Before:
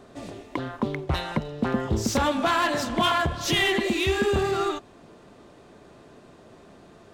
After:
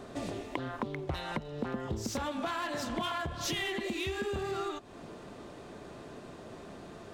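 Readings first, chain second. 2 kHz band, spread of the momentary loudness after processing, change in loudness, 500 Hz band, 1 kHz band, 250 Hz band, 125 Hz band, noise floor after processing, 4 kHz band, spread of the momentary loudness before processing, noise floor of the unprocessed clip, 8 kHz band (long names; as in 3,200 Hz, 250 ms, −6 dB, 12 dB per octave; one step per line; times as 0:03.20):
−11.0 dB, 14 LU, −10.5 dB, −10.0 dB, −11.0 dB, −10.0 dB, −10.0 dB, −49 dBFS, −11.0 dB, 11 LU, −51 dBFS, −8.5 dB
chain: downward compressor 6 to 1, threshold −36 dBFS, peak gain reduction 16 dB
level +3 dB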